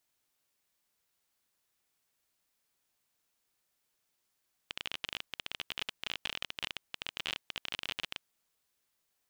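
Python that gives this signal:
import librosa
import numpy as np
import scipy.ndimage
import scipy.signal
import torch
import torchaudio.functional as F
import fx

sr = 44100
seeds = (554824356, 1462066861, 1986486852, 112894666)

y = fx.geiger_clicks(sr, seeds[0], length_s=3.58, per_s=27.0, level_db=-18.5)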